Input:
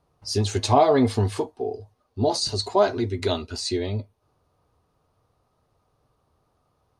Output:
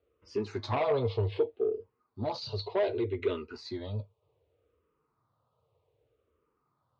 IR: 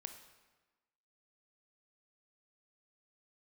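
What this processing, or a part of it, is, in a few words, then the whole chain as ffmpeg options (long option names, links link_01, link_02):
barber-pole phaser into a guitar amplifier: -filter_complex "[0:a]asplit=2[link_01][link_02];[link_02]afreqshift=-0.65[link_03];[link_01][link_03]amix=inputs=2:normalize=1,asoftclip=type=tanh:threshold=-19dB,highpass=85,equalizer=frequency=180:width_type=q:width=4:gain=-8,equalizer=frequency=260:width_type=q:width=4:gain=-6,equalizer=frequency=470:width_type=q:width=4:gain=7,equalizer=frequency=750:width_type=q:width=4:gain=-8,equalizer=frequency=1700:width_type=q:width=4:gain=-6,lowpass=frequency=3500:width=0.5412,lowpass=frequency=3500:width=1.3066,volume=-2.5dB"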